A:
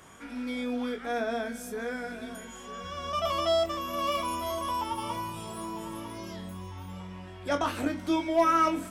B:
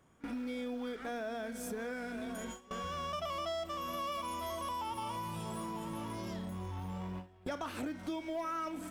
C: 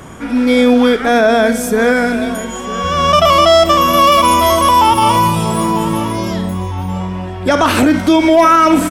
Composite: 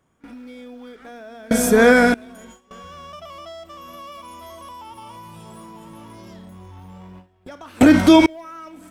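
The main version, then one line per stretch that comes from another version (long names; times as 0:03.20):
B
0:01.51–0:02.14: punch in from C
0:07.81–0:08.26: punch in from C
not used: A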